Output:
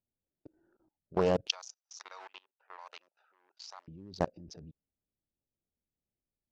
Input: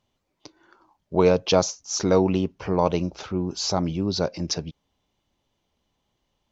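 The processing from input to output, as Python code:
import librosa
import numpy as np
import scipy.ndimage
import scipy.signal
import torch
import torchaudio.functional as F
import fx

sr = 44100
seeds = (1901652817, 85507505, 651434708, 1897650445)

y = fx.wiener(x, sr, points=41)
y = fx.highpass(y, sr, hz=970.0, slope=24, at=(1.47, 3.88))
y = fx.env_lowpass(y, sr, base_hz=2200.0, full_db=-23.5)
y = fx.high_shelf(y, sr, hz=6300.0, db=5.5)
y = fx.level_steps(y, sr, step_db=23)
y = fx.doppler_dist(y, sr, depth_ms=0.42)
y = y * librosa.db_to_amplitude(-2.5)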